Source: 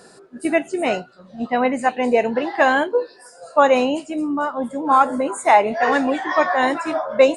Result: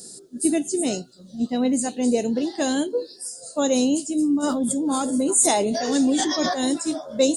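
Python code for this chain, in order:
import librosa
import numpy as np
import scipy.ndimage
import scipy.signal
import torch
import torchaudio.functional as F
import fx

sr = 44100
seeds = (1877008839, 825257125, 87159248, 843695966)

y = fx.curve_eq(x, sr, hz=(130.0, 290.0, 1000.0, 2400.0, 3400.0, 6300.0, 11000.0), db=(0, 3, -18, -15, 2, 13, 15))
y = fx.sustainer(y, sr, db_per_s=23.0, at=(4.42, 6.53), fade=0.02)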